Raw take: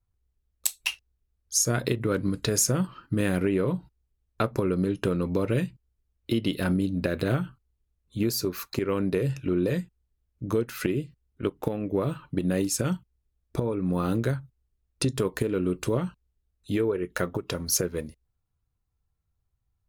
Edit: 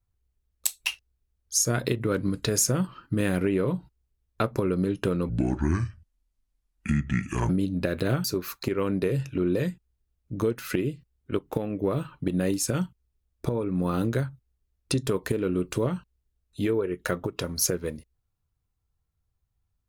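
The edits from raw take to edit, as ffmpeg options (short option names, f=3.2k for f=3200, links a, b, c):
-filter_complex "[0:a]asplit=4[a][b][c][d];[a]atrim=end=5.294[e];[b]atrim=start=5.29:end=6.7,asetpts=PTS-STARTPTS,asetrate=28224,aresample=44100[f];[c]atrim=start=6.696:end=7.452[g];[d]atrim=start=8.348[h];[e][f]acrossfade=d=0.004:c1=hsin:c2=hsin[i];[i][g]acrossfade=d=0.004:c1=hsin:c2=hsin[j];[j][h]acrossfade=d=0.004:c1=hsin:c2=hsin"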